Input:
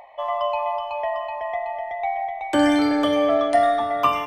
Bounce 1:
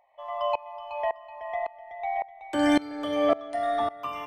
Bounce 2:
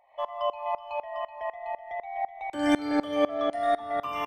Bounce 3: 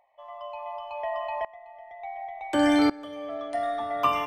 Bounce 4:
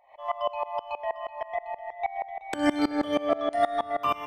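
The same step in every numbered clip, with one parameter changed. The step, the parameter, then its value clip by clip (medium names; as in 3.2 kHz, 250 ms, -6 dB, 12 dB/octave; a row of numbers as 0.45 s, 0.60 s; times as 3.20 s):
sawtooth tremolo in dB, rate: 1.8 Hz, 4 Hz, 0.69 Hz, 6.3 Hz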